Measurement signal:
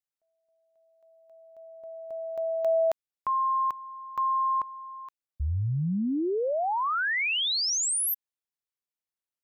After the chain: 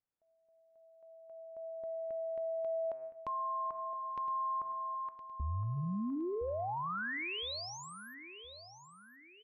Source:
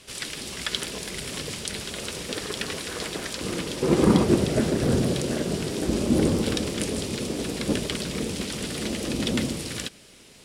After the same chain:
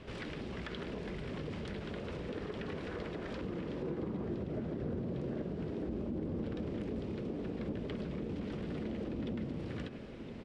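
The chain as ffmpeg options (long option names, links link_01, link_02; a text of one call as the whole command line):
ffmpeg -i in.wav -af "lowpass=2100,tiltshelf=frequency=790:gain=4.5,bandreject=frequency=129.4:width_type=h:width=4,bandreject=frequency=258.8:width_type=h:width=4,bandreject=frequency=388.2:width_type=h:width=4,bandreject=frequency=517.6:width_type=h:width=4,bandreject=frequency=647:width_type=h:width=4,bandreject=frequency=776.4:width_type=h:width=4,bandreject=frequency=905.8:width_type=h:width=4,bandreject=frequency=1035.2:width_type=h:width=4,bandreject=frequency=1164.6:width_type=h:width=4,bandreject=frequency=1294:width_type=h:width=4,bandreject=frequency=1423.4:width_type=h:width=4,bandreject=frequency=1552.8:width_type=h:width=4,bandreject=frequency=1682.2:width_type=h:width=4,bandreject=frequency=1811.6:width_type=h:width=4,bandreject=frequency=1941:width_type=h:width=4,bandreject=frequency=2070.4:width_type=h:width=4,bandreject=frequency=2199.8:width_type=h:width=4,bandreject=frequency=2329.2:width_type=h:width=4,bandreject=frequency=2458.6:width_type=h:width=4,bandreject=frequency=2588:width_type=h:width=4,alimiter=limit=-13dB:level=0:latency=1:release=299,acompressor=threshold=-41dB:ratio=4:attack=1.7:release=84:knee=1:detection=rms,aecho=1:1:1015|2030|3045|4060:0.237|0.0901|0.0342|0.013,volume=3dB" out.wav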